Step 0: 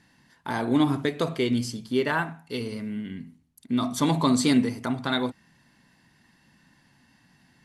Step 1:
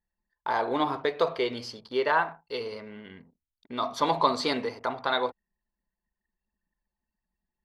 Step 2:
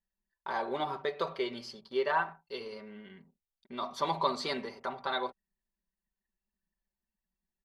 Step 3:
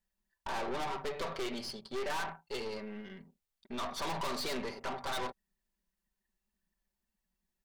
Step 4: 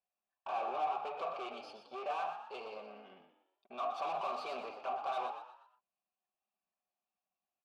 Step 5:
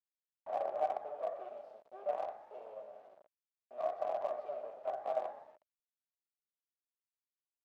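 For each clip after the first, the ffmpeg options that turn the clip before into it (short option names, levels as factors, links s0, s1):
-af "highshelf=f=6000:t=q:w=3:g=-11.5,anlmdn=0.0251,equalizer=f=125:t=o:w=1:g=-11,equalizer=f=250:t=o:w=1:g=-11,equalizer=f=500:t=o:w=1:g=8,equalizer=f=1000:t=o:w=1:g=7,equalizer=f=4000:t=o:w=1:g=-6,equalizer=f=8000:t=o:w=1:g=5,volume=0.708"
-af "aecho=1:1:5.2:0.68,volume=0.422"
-af "aeval=exprs='(tanh(126*val(0)+0.65)-tanh(0.65))/126':c=same,volume=2.37"
-filter_complex "[0:a]asplit=3[s0][s1][s2];[s0]bandpass=f=730:t=q:w=8,volume=1[s3];[s1]bandpass=f=1090:t=q:w=8,volume=0.501[s4];[s2]bandpass=f=2440:t=q:w=8,volume=0.355[s5];[s3][s4][s5]amix=inputs=3:normalize=0,asplit=5[s6][s7][s8][s9][s10];[s7]adelay=121,afreqshift=60,volume=0.355[s11];[s8]adelay=242,afreqshift=120,volume=0.138[s12];[s9]adelay=363,afreqshift=180,volume=0.0537[s13];[s10]adelay=484,afreqshift=240,volume=0.0211[s14];[s6][s11][s12][s13][s14]amix=inputs=5:normalize=0,volume=2.66"
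-filter_complex "[0:a]asplit=2[s0][s1];[s1]adelay=48,volume=0.251[s2];[s0][s2]amix=inputs=2:normalize=0,acrusher=bits=6:dc=4:mix=0:aa=0.000001,bandpass=f=610:t=q:w=7.3:csg=0,volume=3.55"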